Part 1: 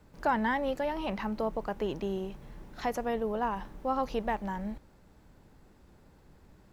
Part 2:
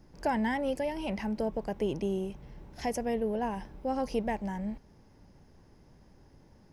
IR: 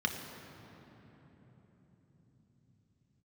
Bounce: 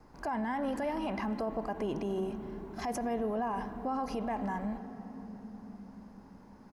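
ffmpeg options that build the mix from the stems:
-filter_complex "[0:a]highpass=f=210:w=0.5412,highpass=f=210:w=1.3066,volume=0.473,asplit=2[s0][s1];[s1]volume=0.422[s2];[1:a]equalizer=f=980:w=0.96:g=10.5,adelay=2.6,volume=0.794,asplit=2[s3][s4];[s4]volume=0.0794[s5];[2:a]atrim=start_sample=2205[s6];[s2][s5]amix=inputs=2:normalize=0[s7];[s7][s6]afir=irnorm=-1:irlink=0[s8];[s0][s3][s8]amix=inputs=3:normalize=0,alimiter=level_in=1.33:limit=0.0631:level=0:latency=1:release=39,volume=0.75"

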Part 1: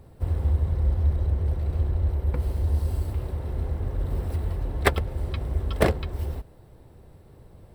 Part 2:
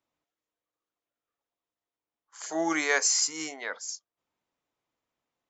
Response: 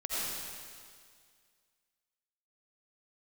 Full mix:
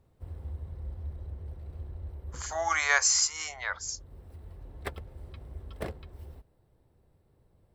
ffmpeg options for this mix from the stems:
-filter_complex "[0:a]volume=0.158[s0];[1:a]highpass=f=640:w=0.5412,highpass=f=640:w=1.3066,equalizer=f=1200:t=o:w=0.77:g=5,volume=1.06,asplit=2[s1][s2];[s2]apad=whole_len=341730[s3];[s0][s3]sidechaincompress=threshold=0.0141:ratio=3:attack=16:release=1220[s4];[s4][s1]amix=inputs=2:normalize=0"

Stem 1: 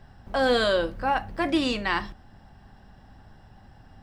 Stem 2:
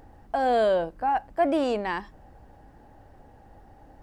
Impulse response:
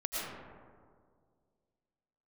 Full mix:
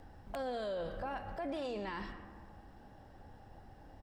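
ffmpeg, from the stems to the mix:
-filter_complex "[0:a]bandreject=f=60:t=h:w=6,bandreject=f=120:t=h:w=6,bandreject=f=180:t=h:w=6,bandreject=f=240:t=h:w=6,bandreject=f=300:t=h:w=6,bandreject=f=360:t=h:w=6,bandreject=f=420:t=h:w=6,bandreject=f=480:t=h:w=6,bandreject=f=540:t=h:w=6,volume=0.316,asplit=2[s0][s1];[s1]volume=0.126[s2];[1:a]acrossover=split=520|1800[s3][s4][s5];[s3]acompressor=threshold=0.0355:ratio=4[s6];[s4]acompressor=threshold=0.0178:ratio=4[s7];[s5]acompressor=threshold=0.00141:ratio=4[s8];[s6][s7][s8]amix=inputs=3:normalize=0,aeval=exprs='(mod(10*val(0)+1,2)-1)/10':c=same,volume=-1,adelay=0.4,volume=0.531,asplit=2[s9][s10];[s10]apad=whole_len=177413[s11];[s0][s11]sidechaincompress=threshold=0.00891:ratio=8:attack=8:release=119[s12];[2:a]atrim=start_sample=2205[s13];[s2][s13]afir=irnorm=-1:irlink=0[s14];[s12][s9][s14]amix=inputs=3:normalize=0,alimiter=level_in=2.51:limit=0.0631:level=0:latency=1:release=23,volume=0.398"

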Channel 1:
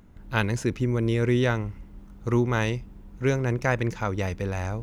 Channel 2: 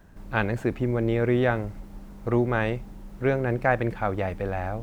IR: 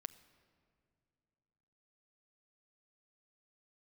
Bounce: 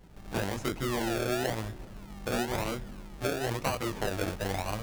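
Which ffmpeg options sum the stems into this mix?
-filter_complex "[0:a]volume=0.299[s0];[1:a]flanger=delay=18:depth=3.8:speed=0.59,acrusher=samples=35:mix=1:aa=0.000001:lfo=1:lforange=21:lforate=1,volume=-1,volume=0.841,asplit=2[s1][s2];[s2]volume=0.794[s3];[2:a]atrim=start_sample=2205[s4];[s3][s4]afir=irnorm=-1:irlink=0[s5];[s0][s1][s5]amix=inputs=3:normalize=0,acompressor=threshold=0.0447:ratio=6"

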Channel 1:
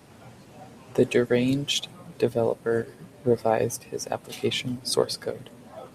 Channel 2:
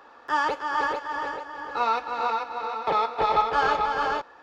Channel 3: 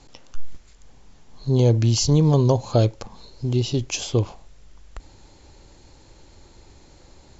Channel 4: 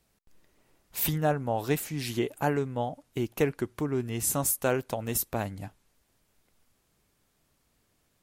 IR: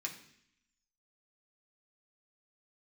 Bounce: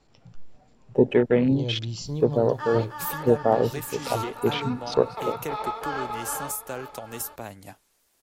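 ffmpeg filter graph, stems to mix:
-filter_complex "[0:a]afwtdn=0.0316,aemphasis=mode=reproduction:type=75fm,volume=1.19[s0];[1:a]adelay=2300,volume=0.376,asplit=2[s1][s2];[s2]volume=0.266[s3];[2:a]bandreject=f=6500:w=6.4,volume=0.178,asplit=2[s4][s5];[s5]volume=0.316[s6];[3:a]bass=f=250:g=-12,treble=f=4000:g=5,acrossover=split=210[s7][s8];[s8]acompressor=threshold=0.0126:ratio=2.5[s9];[s7][s9]amix=inputs=2:normalize=0,adelay=2050,volume=1.26[s10];[4:a]atrim=start_sample=2205[s11];[s6][s11]afir=irnorm=-1:irlink=0[s12];[s3]aecho=0:1:844:1[s13];[s0][s1][s4][s10][s12][s13]amix=inputs=6:normalize=0"

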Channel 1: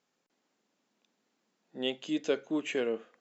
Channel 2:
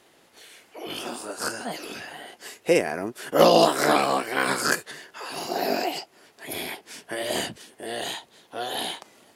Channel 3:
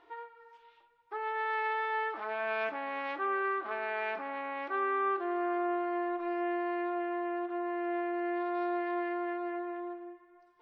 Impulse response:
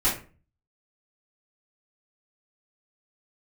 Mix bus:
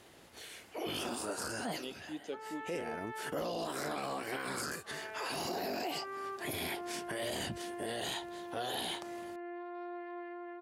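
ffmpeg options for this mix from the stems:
-filter_complex "[0:a]equalizer=f=1200:t=o:w=2.1:g=-7.5,volume=0.316,asplit=2[s0][s1];[1:a]volume=0.891[s2];[2:a]adelay=1200,volume=0.266[s3];[s1]apad=whole_len=412703[s4];[s2][s4]sidechaincompress=threshold=0.00224:ratio=12:attack=40:release=525[s5];[s5][s3]amix=inputs=2:normalize=0,equalizer=f=64:t=o:w=1.9:g=13.5,acompressor=threshold=0.0224:ratio=2.5,volume=1[s6];[s0][s6]amix=inputs=2:normalize=0,alimiter=level_in=1.68:limit=0.0631:level=0:latency=1:release=13,volume=0.596"

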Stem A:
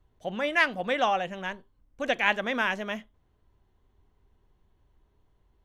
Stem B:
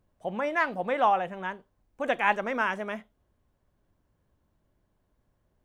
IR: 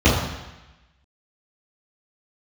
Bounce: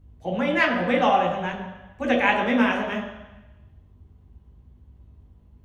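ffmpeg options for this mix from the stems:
-filter_complex "[0:a]volume=0.631,asplit=2[s0][s1];[s1]volume=0.158[s2];[1:a]volume=-1,volume=0.75[s3];[2:a]atrim=start_sample=2205[s4];[s2][s4]afir=irnorm=-1:irlink=0[s5];[s0][s3][s5]amix=inputs=3:normalize=0,aeval=exprs='val(0)+0.002*(sin(2*PI*50*n/s)+sin(2*PI*2*50*n/s)/2+sin(2*PI*3*50*n/s)/3+sin(2*PI*4*50*n/s)/4+sin(2*PI*5*50*n/s)/5)':c=same"

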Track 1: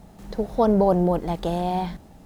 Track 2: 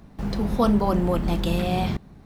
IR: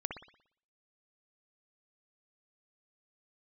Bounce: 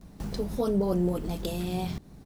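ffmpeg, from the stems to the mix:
-filter_complex "[0:a]lowshelf=f=600:t=q:w=1.5:g=10,volume=0.126[s0];[1:a]acompressor=threshold=0.0398:ratio=6,bass=f=250:g=2,treble=f=4000:g=12,adelay=13,volume=0.596[s1];[s0][s1]amix=inputs=2:normalize=0"

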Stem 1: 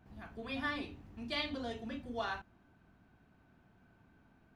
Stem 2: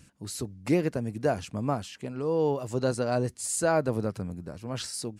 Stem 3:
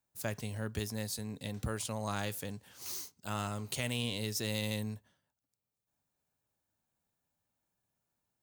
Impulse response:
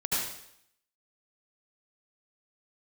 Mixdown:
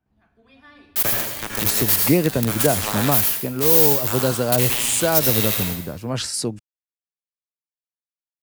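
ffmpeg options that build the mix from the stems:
-filter_complex "[0:a]volume=0.188,asplit=2[s0][s1];[s1]volume=0.15[s2];[1:a]adelay=1400,volume=1.33[s3];[2:a]acrossover=split=290[s4][s5];[s4]acompressor=threshold=0.00794:ratio=4[s6];[s6][s5]amix=inputs=2:normalize=0,aexciter=amount=3.3:drive=9.7:freq=11000,acrusher=bits=4:mix=0:aa=0.000001,adelay=800,volume=0.891,asplit=2[s7][s8];[s8]volume=0.562[s9];[3:a]atrim=start_sample=2205[s10];[s2][s9]amix=inputs=2:normalize=0[s11];[s11][s10]afir=irnorm=-1:irlink=0[s12];[s0][s3][s7][s12]amix=inputs=4:normalize=0,acrossover=split=140|3000[s13][s14][s15];[s14]acompressor=threshold=0.0501:ratio=2[s16];[s13][s16][s15]amix=inputs=3:normalize=0,dynaudnorm=f=620:g=3:m=3.55"

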